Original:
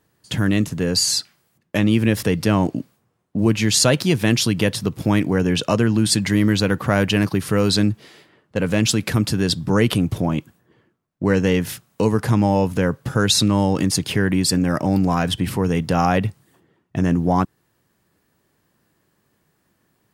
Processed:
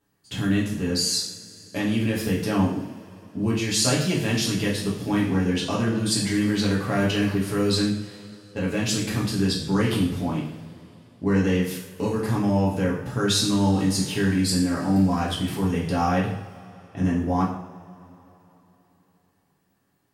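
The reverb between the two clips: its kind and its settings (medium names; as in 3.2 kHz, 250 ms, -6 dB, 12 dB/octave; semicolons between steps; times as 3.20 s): two-slope reverb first 0.59 s, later 3.6 s, from -21 dB, DRR -5.5 dB; trim -11.5 dB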